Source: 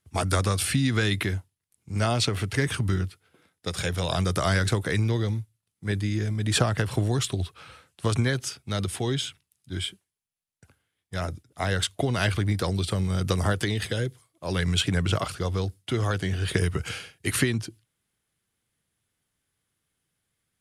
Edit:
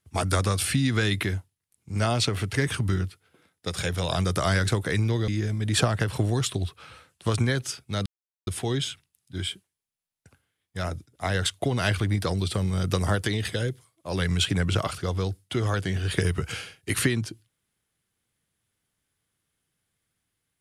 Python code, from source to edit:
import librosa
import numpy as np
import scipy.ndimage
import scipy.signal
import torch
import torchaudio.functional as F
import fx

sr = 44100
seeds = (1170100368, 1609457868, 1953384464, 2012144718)

y = fx.edit(x, sr, fx.cut(start_s=5.28, length_s=0.78),
    fx.insert_silence(at_s=8.84, length_s=0.41), tone=tone)